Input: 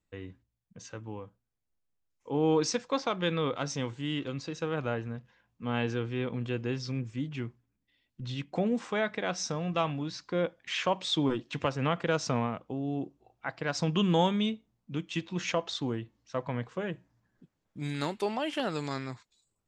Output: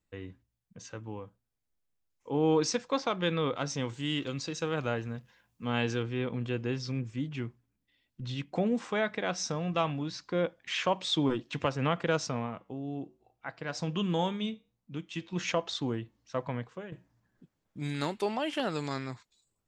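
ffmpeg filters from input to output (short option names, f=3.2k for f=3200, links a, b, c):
-filter_complex "[0:a]asettb=1/sr,asplit=3[a][b][c];[a]atrim=end=3.894[d];[b]atrim=start=3.89:end=6.03,asetpts=PTS-STARTPTS,afade=t=in:d=0.004:c=qsin,afade=t=out:st=2.136:d=0.004:c=qsin,highshelf=f=4.2k:g=10.5[e];[c]atrim=start=6.026[f];[d][e]acrossfade=d=0.004:c1=hsin:c2=qsin[g];[g][f]acrossfade=d=0.004:c1=qsin:c2=hsin,asettb=1/sr,asplit=3[h][i][j];[h]atrim=end=12.264[k];[i]atrim=start=12.26:end=15.33,asetpts=PTS-STARTPTS,afade=t=in:d=0.004:c=qsin,afade=t=out:st=3.066:d=0.004:c=qsin,flanger=delay=6.5:depth=1.3:regen=-87:speed=1.1:shape=triangular[l];[j]atrim=start=15.326[m];[k][l]acrossfade=d=0.004:c1=hsin:c2=qsin[n];[n][m]acrossfade=d=0.004:c1=qsin:c2=hsin,asplit=2[o][p];[o]atrim=end=16.92,asetpts=PTS-STARTPTS,afade=t=out:st=16.45:d=0.47:silence=0.237137[q];[p]atrim=start=16.92,asetpts=PTS-STARTPTS,afade=t=in:d=0.004:c=hsin:silence=0.237137[r];[q][r]concat=n=2:v=0:a=1"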